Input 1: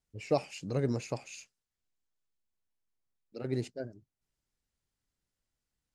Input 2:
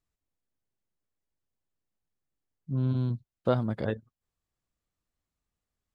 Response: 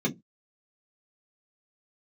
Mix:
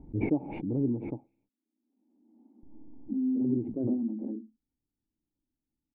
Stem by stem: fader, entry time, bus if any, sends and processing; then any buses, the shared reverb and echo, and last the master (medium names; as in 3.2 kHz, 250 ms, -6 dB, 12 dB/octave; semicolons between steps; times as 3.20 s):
+2.5 dB, 0.00 s, muted 1.49–2.63 s, no send, none
-3.0 dB, 0.40 s, send -17 dB, steep high-pass 210 Hz 96 dB/octave; auto duck -9 dB, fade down 0.35 s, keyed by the first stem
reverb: on, RT60 0.15 s, pre-delay 3 ms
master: cascade formant filter u; bass shelf 490 Hz +9.5 dB; swell ahead of each attack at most 39 dB/s